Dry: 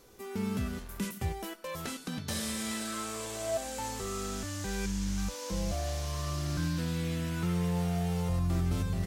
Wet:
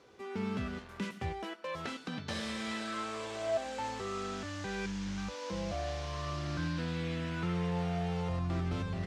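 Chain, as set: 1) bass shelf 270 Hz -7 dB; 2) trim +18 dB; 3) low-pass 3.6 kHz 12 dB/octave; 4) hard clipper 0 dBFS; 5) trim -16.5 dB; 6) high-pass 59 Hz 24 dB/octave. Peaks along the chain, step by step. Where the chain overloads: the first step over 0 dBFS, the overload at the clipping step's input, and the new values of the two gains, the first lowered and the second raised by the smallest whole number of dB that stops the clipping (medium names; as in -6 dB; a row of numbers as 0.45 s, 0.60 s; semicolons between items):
-23.5 dBFS, -5.5 dBFS, -6.0 dBFS, -6.0 dBFS, -22.5 dBFS, -22.0 dBFS; nothing clips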